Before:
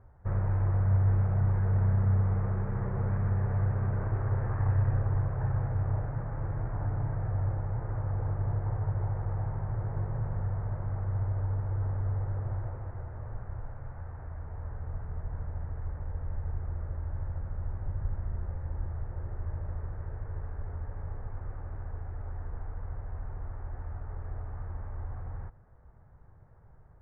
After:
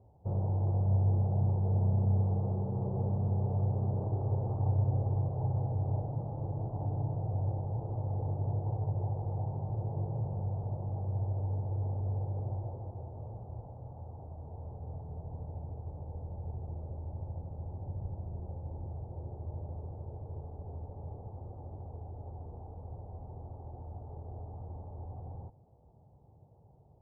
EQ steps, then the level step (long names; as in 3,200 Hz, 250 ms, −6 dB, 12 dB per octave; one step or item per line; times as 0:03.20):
high-pass filter 100 Hz
elliptic low-pass filter 830 Hz, stop band 70 dB
+1.5 dB